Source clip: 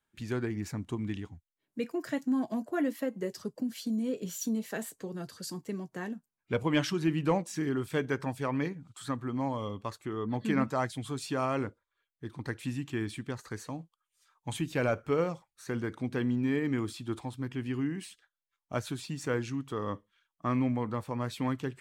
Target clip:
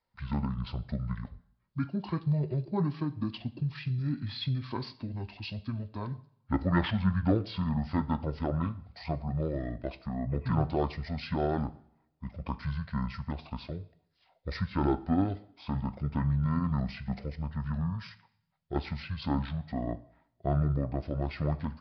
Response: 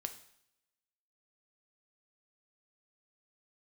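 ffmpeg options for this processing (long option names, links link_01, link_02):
-filter_complex "[0:a]asetrate=25476,aresample=44100,atempo=1.73107,asplit=2[link_01][link_02];[1:a]atrim=start_sample=2205[link_03];[link_02][link_03]afir=irnorm=-1:irlink=0,volume=2dB[link_04];[link_01][link_04]amix=inputs=2:normalize=0,aresample=11025,aresample=44100,volume=-4.5dB"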